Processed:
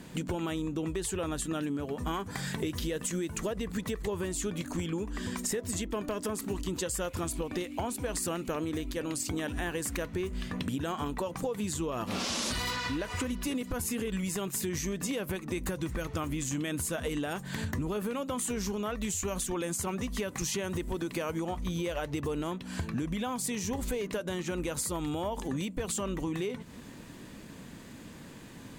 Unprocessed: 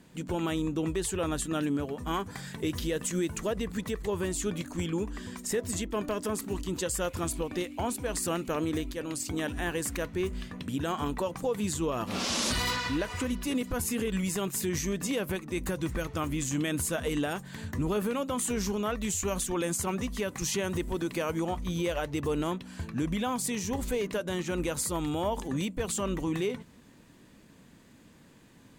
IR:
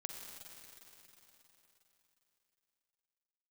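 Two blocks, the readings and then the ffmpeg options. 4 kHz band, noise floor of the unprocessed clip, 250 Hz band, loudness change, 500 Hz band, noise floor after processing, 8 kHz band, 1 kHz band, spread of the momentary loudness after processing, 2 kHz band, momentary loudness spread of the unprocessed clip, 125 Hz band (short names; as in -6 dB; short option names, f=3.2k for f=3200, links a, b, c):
-2.0 dB, -56 dBFS, -2.0 dB, -2.0 dB, -2.5 dB, -47 dBFS, -1.5 dB, -2.5 dB, 3 LU, -2.0 dB, 4 LU, -1.5 dB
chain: -af "acompressor=threshold=-40dB:ratio=6,volume=9dB"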